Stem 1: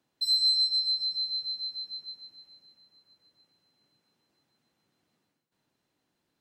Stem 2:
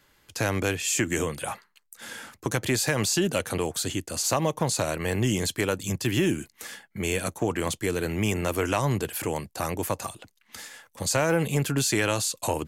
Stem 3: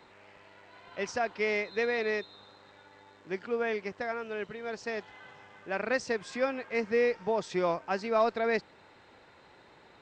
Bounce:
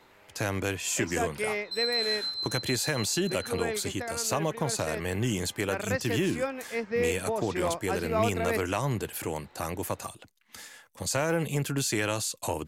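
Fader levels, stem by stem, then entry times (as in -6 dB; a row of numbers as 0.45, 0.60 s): -6.0, -4.0, -1.5 dB; 1.50, 0.00, 0.00 s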